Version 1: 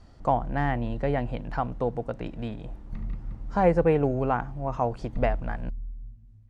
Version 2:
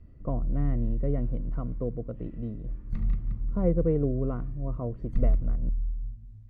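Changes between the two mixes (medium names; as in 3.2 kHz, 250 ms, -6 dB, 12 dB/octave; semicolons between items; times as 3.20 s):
speech: add boxcar filter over 53 samples; background: add bass shelf 170 Hz +7 dB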